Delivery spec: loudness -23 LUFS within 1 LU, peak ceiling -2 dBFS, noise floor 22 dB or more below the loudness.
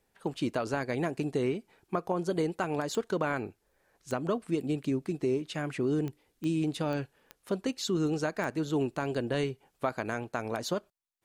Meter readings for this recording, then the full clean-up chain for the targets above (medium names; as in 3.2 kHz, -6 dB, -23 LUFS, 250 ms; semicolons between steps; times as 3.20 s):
clicks found 7; loudness -32.5 LUFS; peak level -14.0 dBFS; loudness target -23.0 LUFS
-> de-click; trim +9.5 dB